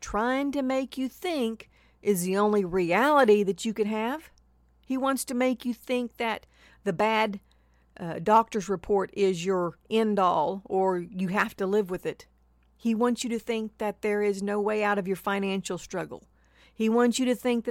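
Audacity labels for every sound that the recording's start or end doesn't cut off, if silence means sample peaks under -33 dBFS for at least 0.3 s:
2.050000	4.170000	sound
4.900000	6.430000	sound
6.860000	7.360000	sound
7.970000	12.120000	sound
12.850000	16.160000	sound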